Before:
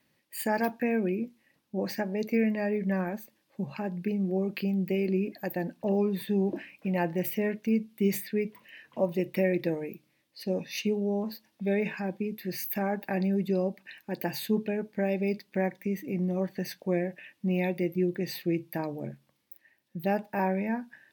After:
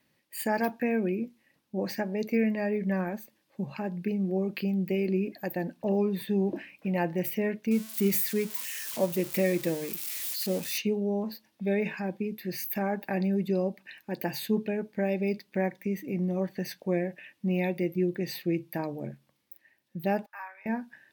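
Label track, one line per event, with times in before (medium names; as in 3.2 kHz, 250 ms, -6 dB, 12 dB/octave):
7.710000	10.780000	zero-crossing glitches of -27 dBFS
20.260000	20.660000	ladder high-pass 1.1 kHz, resonance 65%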